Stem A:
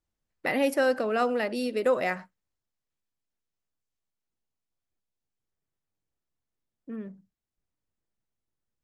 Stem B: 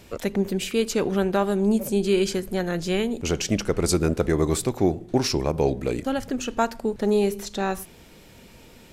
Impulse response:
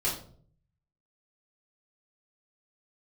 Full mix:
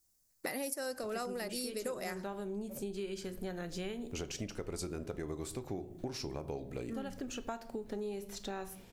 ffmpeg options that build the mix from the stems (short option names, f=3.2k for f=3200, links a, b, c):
-filter_complex "[0:a]aexciter=amount=3.4:drive=9.6:freq=4.5k,volume=0.5dB[a];[1:a]adelay=900,volume=-10dB,asplit=2[b][c];[c]volume=-18dB[d];[2:a]atrim=start_sample=2205[e];[d][e]afir=irnorm=-1:irlink=0[f];[a][b][f]amix=inputs=3:normalize=0,acompressor=threshold=-37dB:ratio=6"